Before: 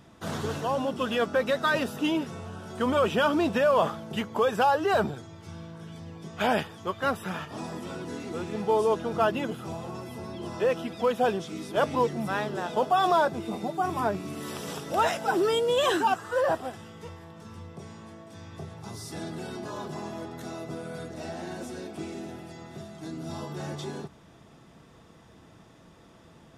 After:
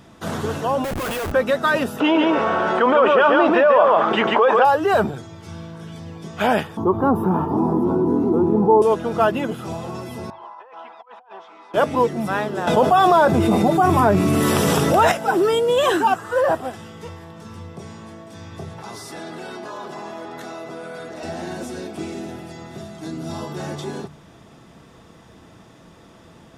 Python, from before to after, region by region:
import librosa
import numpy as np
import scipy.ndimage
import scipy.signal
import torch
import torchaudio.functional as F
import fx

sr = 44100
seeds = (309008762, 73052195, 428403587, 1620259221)

y = fx.chain(x, sr, fx.highpass(hz=550.0, slope=12),
    fx.schmitt(flips_db=-39.5), at=(0.84, 1.32))
y = fx.chain(y, sr, fx.bandpass_edges(low_hz=460.0, high_hz=2500.0),
    fx.echo_single(ms=142, db=-4.0),
    fx.env_flatten(amount_pct=70), at=(2.0, 4.65))
y = fx.chain(y, sr, fx.curve_eq(hz=(140.0, 370.0, 580.0, 920.0, 2000.0, 5400.0, 8000.0, 14000.0), db=(0, 8, -7, 5, -26, -24, -27, -11)),
    fx.env_flatten(amount_pct=50), at=(6.77, 8.82))
y = fx.chain(y, sr, fx.ladder_bandpass(hz=1000.0, resonance_pct=70),
    fx.over_compress(threshold_db=-50.0, ratio=-1.0), at=(10.3, 11.74))
y = fx.chain(y, sr, fx.peak_eq(hz=84.0, db=5.5, octaves=1.5),
    fx.env_flatten(amount_pct=70), at=(12.67, 15.12))
y = fx.chain(y, sr, fx.highpass(hz=730.0, slope=6),
    fx.high_shelf(hz=3800.0, db=-10.5),
    fx.env_flatten(amount_pct=70), at=(18.78, 21.23))
y = fx.hum_notches(y, sr, base_hz=50, count=3)
y = fx.dynamic_eq(y, sr, hz=4600.0, q=0.83, threshold_db=-46.0, ratio=4.0, max_db=-5)
y = y * librosa.db_to_amplitude(7.0)